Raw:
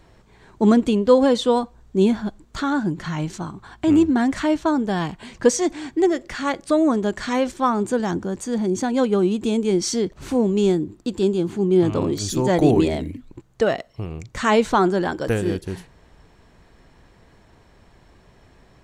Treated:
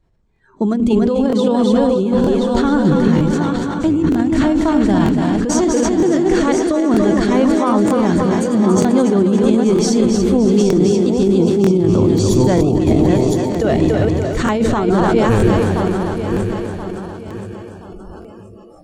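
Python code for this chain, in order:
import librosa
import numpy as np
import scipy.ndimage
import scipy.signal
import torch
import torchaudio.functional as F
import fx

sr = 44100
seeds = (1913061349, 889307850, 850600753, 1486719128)

y = fx.reverse_delay_fb(x, sr, ms=513, feedback_pct=58, wet_db=-6.0)
y = fx.echo_split(y, sr, split_hz=310.0, low_ms=95, high_ms=285, feedback_pct=52, wet_db=-6.5)
y = fx.over_compress(y, sr, threshold_db=-17.0, ratio=-0.5)
y = fx.high_shelf(y, sr, hz=4000.0, db=8.5)
y = fx.noise_reduce_blind(y, sr, reduce_db=22)
y = fx.tilt_eq(y, sr, slope=-2.5)
y = fx.buffer_crackle(y, sr, first_s=0.34, period_s=0.94, block=1024, kind='repeat')
y = fx.sustainer(y, sr, db_per_s=22.0)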